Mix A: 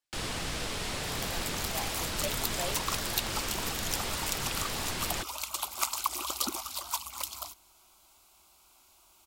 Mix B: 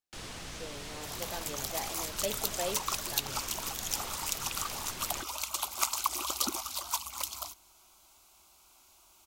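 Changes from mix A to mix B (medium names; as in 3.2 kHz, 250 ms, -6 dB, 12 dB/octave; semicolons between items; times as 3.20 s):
speech: remove high-pass 570 Hz; first sound -8.5 dB; master: add peaking EQ 6.2 kHz +3.5 dB 0.27 oct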